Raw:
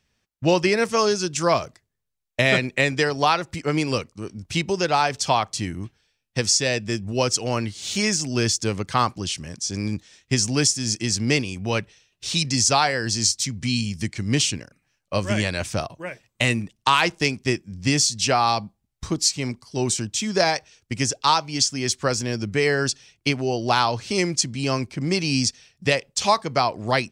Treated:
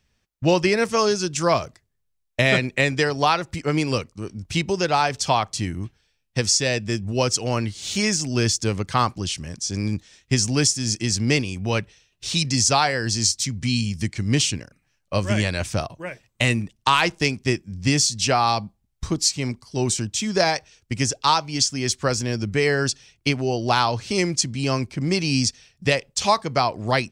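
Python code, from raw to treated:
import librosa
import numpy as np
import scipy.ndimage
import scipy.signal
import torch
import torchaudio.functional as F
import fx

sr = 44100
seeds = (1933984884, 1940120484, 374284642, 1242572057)

y = fx.low_shelf(x, sr, hz=78.0, db=8.5)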